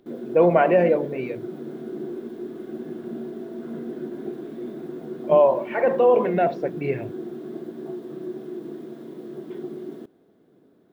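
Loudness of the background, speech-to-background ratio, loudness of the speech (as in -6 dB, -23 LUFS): -34.5 LUFS, 14.0 dB, -20.5 LUFS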